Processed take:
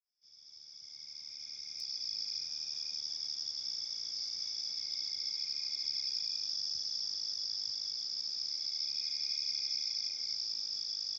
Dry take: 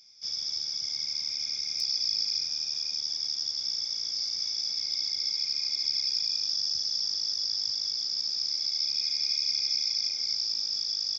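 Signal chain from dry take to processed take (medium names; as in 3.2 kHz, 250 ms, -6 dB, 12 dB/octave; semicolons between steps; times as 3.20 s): fade-in on the opening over 2.82 s; trim -7.5 dB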